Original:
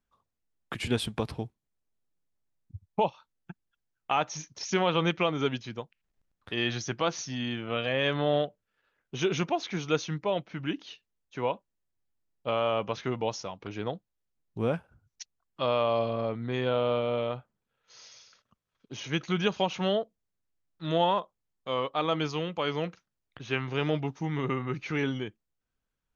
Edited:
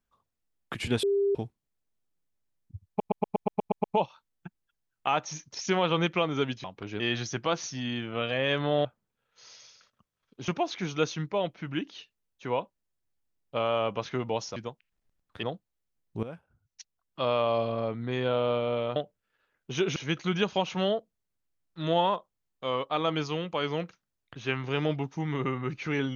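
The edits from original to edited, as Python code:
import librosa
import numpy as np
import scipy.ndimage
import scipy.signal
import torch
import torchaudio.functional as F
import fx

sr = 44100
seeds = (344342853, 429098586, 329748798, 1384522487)

y = fx.edit(x, sr, fx.bleep(start_s=1.03, length_s=0.32, hz=399.0, db=-22.0),
    fx.stutter(start_s=2.88, slice_s=0.12, count=9),
    fx.swap(start_s=5.68, length_s=0.87, other_s=13.48, other_length_s=0.36),
    fx.swap(start_s=8.4, length_s=1.0, other_s=17.37, other_length_s=1.63),
    fx.fade_in_from(start_s=14.64, length_s=1.06, floor_db=-15.0), tone=tone)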